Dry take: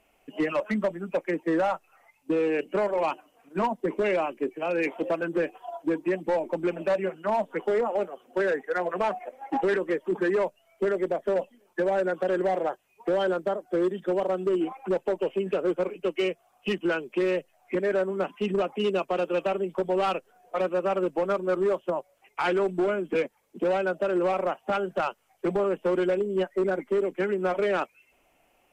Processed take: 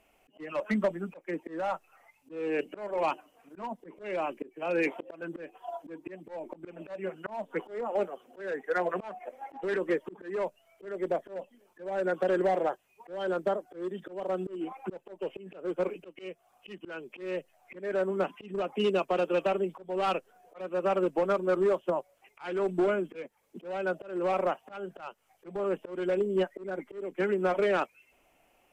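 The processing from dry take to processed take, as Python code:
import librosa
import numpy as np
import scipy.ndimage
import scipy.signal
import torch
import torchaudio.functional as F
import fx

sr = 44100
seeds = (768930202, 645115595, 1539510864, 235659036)

y = fx.auto_swell(x, sr, attack_ms=336.0)
y = y * 10.0 ** (-1.0 / 20.0)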